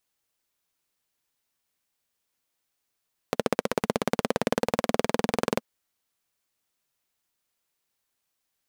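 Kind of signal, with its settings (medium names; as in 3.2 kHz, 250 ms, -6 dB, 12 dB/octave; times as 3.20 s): single-cylinder engine model, changing speed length 2.29 s, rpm 1800, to 2600, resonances 230/460 Hz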